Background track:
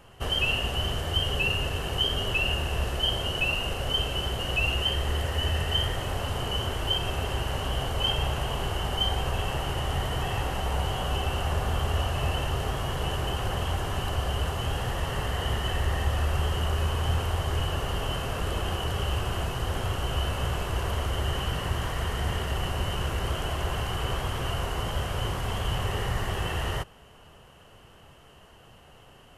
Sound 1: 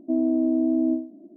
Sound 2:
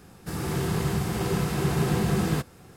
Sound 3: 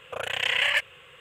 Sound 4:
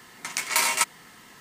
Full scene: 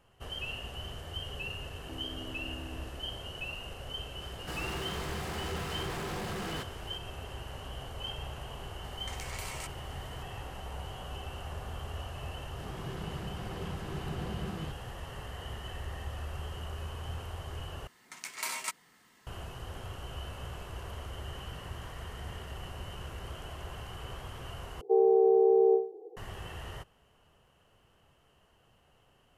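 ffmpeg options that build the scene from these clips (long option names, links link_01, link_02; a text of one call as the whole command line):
ffmpeg -i bed.wav -i cue0.wav -i cue1.wav -i cue2.wav -i cue3.wav -filter_complex "[1:a]asplit=2[link_01][link_02];[2:a]asplit=2[link_03][link_04];[4:a]asplit=2[link_05][link_06];[0:a]volume=-13dB[link_07];[link_01]acompressor=threshold=-35dB:ratio=6:attack=3.2:release=140:knee=1:detection=peak[link_08];[link_03]asplit=2[link_09][link_10];[link_10]highpass=frequency=720:poles=1,volume=30dB,asoftclip=type=tanh:threshold=-13dB[link_11];[link_09][link_11]amix=inputs=2:normalize=0,lowpass=frequency=3700:poles=1,volume=-6dB[link_12];[link_05]acompressor=threshold=-35dB:ratio=4:attack=6:release=38:knee=1:detection=rms[link_13];[link_04]lowpass=4200[link_14];[link_02]afreqshift=130[link_15];[link_07]asplit=3[link_16][link_17][link_18];[link_16]atrim=end=17.874[link_19];[link_06]atrim=end=1.4,asetpts=PTS-STARTPTS,volume=-13.5dB[link_20];[link_17]atrim=start=19.266:end=24.814[link_21];[link_15]atrim=end=1.36,asetpts=PTS-STARTPTS,volume=-1dB[link_22];[link_18]atrim=start=26.166[link_23];[link_08]atrim=end=1.36,asetpts=PTS-STARTPTS,volume=-10.5dB,afade=type=in:duration=0.004:curve=hsin,afade=type=out:start_time=1.356:duration=0.004:curve=hsin,adelay=1810[link_24];[link_12]atrim=end=2.76,asetpts=PTS-STARTPTS,volume=-18dB,afade=type=in:duration=0.004:curve=hsin,afade=type=out:start_time=2.756:duration=0.004:curve=hsin,adelay=185661S[link_25];[link_13]atrim=end=1.4,asetpts=PTS-STARTPTS,volume=-8dB,afade=type=in:duration=0.004:curve=hsin,afade=type=out:start_time=1.396:duration=0.004:curve=hsin,adelay=8830[link_26];[link_14]atrim=end=2.76,asetpts=PTS-STARTPTS,volume=-14.5dB,afade=type=in:duration=0.004:curve=hsin,afade=type=out:start_time=2.756:duration=0.004:curve=hsin,adelay=12300[link_27];[link_19][link_20]acrossfade=duration=0.004:curve1=hsin:curve2=hsin[link_28];[link_28][link_21]acrossfade=duration=0.004:curve1=hsin:curve2=hsin[link_29];[link_29][link_22]acrossfade=duration=0.004:curve1=hsin:curve2=hsin[link_30];[link_30][link_23]acrossfade=duration=0.004:curve1=hsin:curve2=hsin[link_31];[link_31][link_24][link_25][link_26][link_27]amix=inputs=5:normalize=0" out.wav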